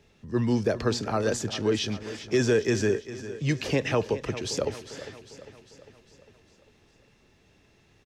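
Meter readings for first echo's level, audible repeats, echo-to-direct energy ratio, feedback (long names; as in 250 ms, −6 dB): −14.0 dB, 5, −12.5 dB, 55%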